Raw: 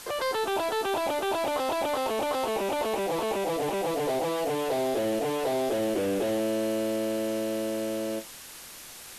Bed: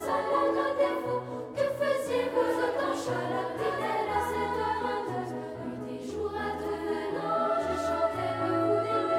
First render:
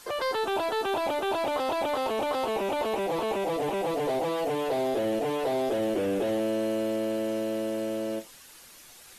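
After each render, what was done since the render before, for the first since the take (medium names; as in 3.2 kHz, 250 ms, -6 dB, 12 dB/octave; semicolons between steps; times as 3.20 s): noise reduction 8 dB, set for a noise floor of -45 dBFS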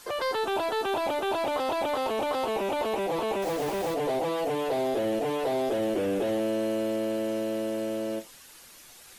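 3.42–3.94 s: send-on-delta sampling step -33 dBFS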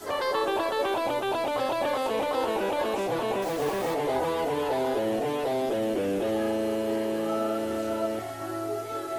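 add bed -5.5 dB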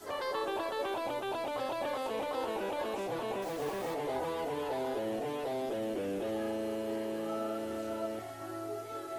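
trim -8 dB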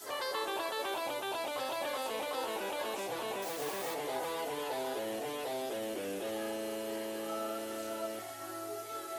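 tilt EQ +2.5 dB/octave; de-hum 80.54 Hz, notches 39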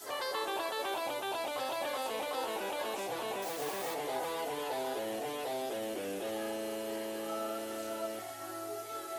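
peaking EQ 750 Hz +3 dB 0.23 oct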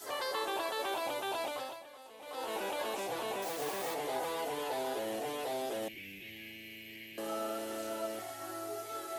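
1.45–2.57 s: dip -16.5 dB, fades 0.38 s; 5.88–7.18 s: FFT filter 160 Hz 0 dB, 230 Hz -11 dB, 350 Hz -13 dB, 500 Hz -27 dB, 1.3 kHz -29 dB, 2.2 kHz +8 dB, 3.5 kHz -5 dB, 9.8 kHz -19 dB, 14 kHz +2 dB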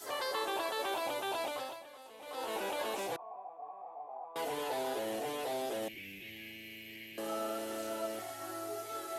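3.16–4.36 s: cascade formant filter a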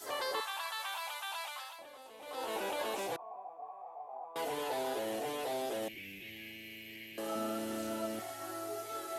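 0.40–1.79 s: high-pass 950 Hz 24 dB/octave; 3.66–4.13 s: peaking EQ 250 Hz -11.5 dB; 7.35–8.20 s: resonant low shelf 330 Hz +6.5 dB, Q 1.5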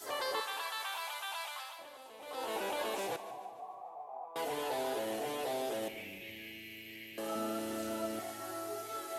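two-band feedback delay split 440 Hz, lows 215 ms, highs 147 ms, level -13.5 dB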